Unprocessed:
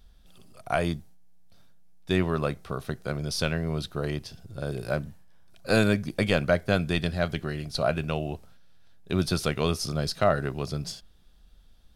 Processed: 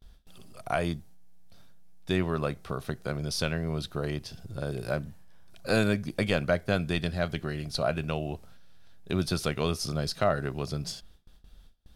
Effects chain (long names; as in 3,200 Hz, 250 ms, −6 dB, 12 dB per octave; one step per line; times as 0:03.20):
noise gate with hold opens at −46 dBFS
in parallel at +2.5 dB: downward compressor, threshold −37 dBFS, peak gain reduction 19 dB
on the sum: level −4.5 dB